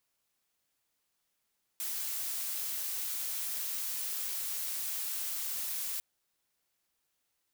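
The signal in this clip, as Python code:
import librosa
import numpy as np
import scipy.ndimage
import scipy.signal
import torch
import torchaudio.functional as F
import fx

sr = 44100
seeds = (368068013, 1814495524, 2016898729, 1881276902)

y = fx.noise_colour(sr, seeds[0], length_s=4.2, colour='blue', level_db=-36.0)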